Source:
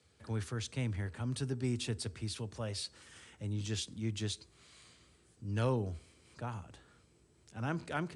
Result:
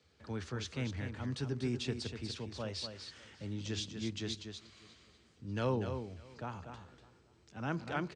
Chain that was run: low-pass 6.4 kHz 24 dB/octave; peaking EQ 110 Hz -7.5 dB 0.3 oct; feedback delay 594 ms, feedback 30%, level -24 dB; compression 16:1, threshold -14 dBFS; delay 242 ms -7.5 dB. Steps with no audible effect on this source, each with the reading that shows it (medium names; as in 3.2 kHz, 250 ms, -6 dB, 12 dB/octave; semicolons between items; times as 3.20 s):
compression, threshold -14 dBFS: peak at its input -21.5 dBFS